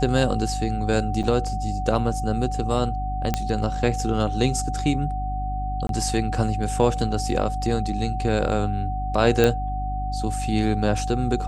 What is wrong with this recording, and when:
hum 50 Hz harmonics 6 -28 dBFS
whine 750 Hz -29 dBFS
1.23–1.24 s: dropout 6.3 ms
3.34 s: pop -8 dBFS
5.87–5.89 s: dropout 22 ms
9.44 s: pop -6 dBFS

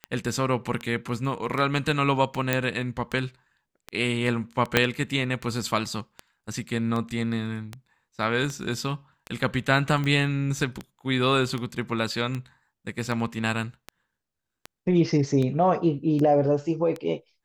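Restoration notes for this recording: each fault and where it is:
tick 78 rpm -18 dBFS
2.53 s: pop -8 dBFS
4.77 s: pop -3 dBFS

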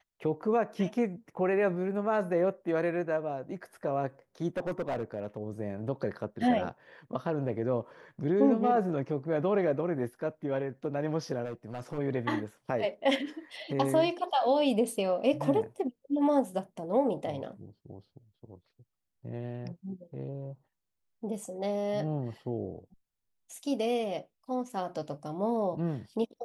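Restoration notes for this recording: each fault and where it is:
4.57–5.37 s: clipped -28 dBFS
11.45–11.99 s: clipped -32.5 dBFS

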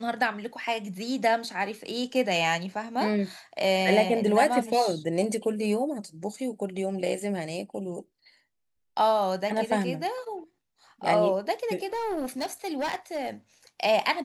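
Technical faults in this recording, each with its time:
11.86–13.30 s: clipped -25.5 dBFS

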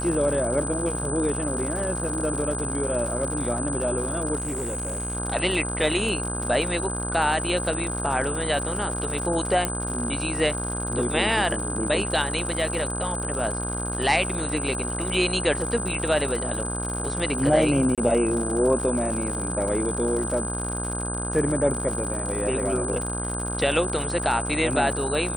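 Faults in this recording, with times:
buzz 60 Hz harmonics 27 -31 dBFS
crackle 120 per s -30 dBFS
whine 8.1 kHz -30 dBFS
4.37–5.17 s: clipped -25 dBFS
9.65 s: pop -9 dBFS
17.95–17.98 s: dropout 27 ms

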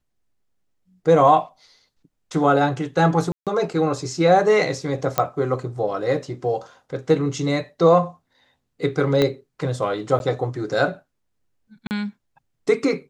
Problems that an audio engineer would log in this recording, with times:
3.32–3.47 s: dropout 147 ms
5.18 s: pop -4 dBFS
9.22 s: pop -7 dBFS
10.19–10.20 s: dropout
11.87–11.91 s: dropout 39 ms

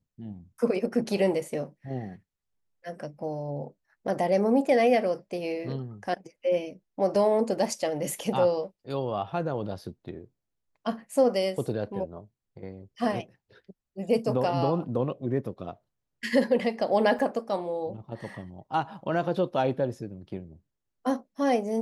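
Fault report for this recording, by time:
17.19 s: dropout 2.4 ms

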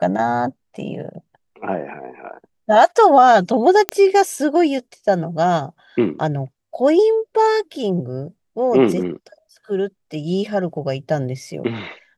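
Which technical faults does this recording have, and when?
3.89 s: pop -2 dBFS

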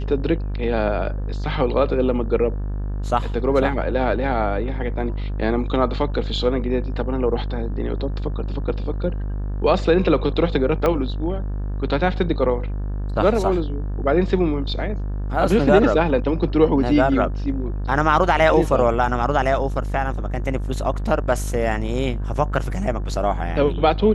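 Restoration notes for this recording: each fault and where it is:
buzz 50 Hz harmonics 36 -25 dBFS
10.86 s: pop -8 dBFS

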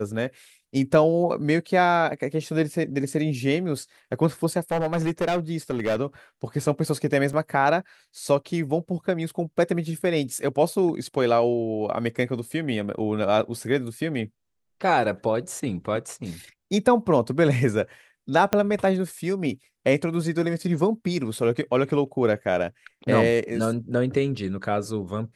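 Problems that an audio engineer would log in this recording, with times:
4.71–5.96 s: clipped -19.5 dBFS
7.33 s: dropout 3 ms
18.53 s: pop -7 dBFS

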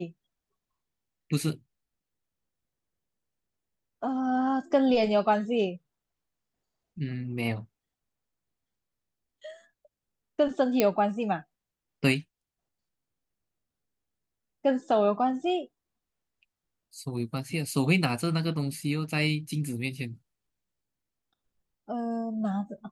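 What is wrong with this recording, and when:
10.80 s: pop -8 dBFS

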